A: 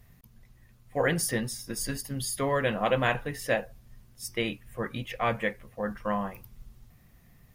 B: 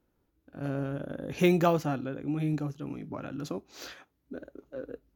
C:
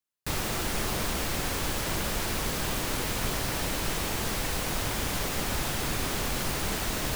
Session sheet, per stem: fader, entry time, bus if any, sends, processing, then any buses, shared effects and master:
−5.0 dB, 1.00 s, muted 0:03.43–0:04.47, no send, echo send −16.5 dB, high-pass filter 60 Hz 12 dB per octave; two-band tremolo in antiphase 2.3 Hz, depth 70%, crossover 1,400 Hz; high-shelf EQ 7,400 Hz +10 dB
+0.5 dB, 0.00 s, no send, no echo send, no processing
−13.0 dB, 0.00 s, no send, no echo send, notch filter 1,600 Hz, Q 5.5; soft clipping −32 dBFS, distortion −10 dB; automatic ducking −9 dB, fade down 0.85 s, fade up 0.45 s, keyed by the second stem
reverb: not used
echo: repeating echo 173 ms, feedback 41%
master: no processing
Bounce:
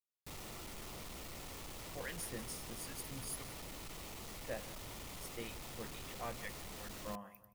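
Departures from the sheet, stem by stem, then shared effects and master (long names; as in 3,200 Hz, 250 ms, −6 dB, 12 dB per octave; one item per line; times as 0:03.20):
stem A −5.0 dB → −15.0 dB
stem B: muted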